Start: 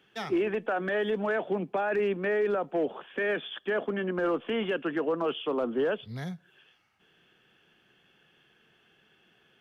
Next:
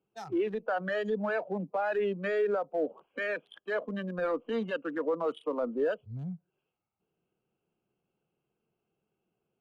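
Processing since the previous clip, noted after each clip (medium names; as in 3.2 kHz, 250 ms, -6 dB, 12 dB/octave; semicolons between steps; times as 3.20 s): local Wiener filter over 25 samples; spectral noise reduction 12 dB; peaking EQ 260 Hz -4 dB 0.21 oct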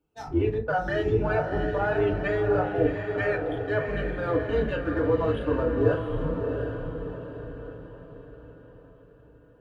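octave divider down 2 oct, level +2 dB; echo that smears into a reverb 714 ms, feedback 46%, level -5 dB; FDN reverb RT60 0.35 s, low-frequency decay 1.05×, high-frequency decay 0.55×, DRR -1 dB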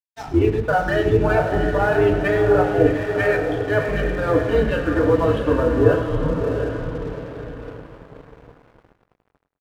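crossover distortion -47 dBFS; feedback delay 102 ms, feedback 36%, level -11.5 dB; trim +7.5 dB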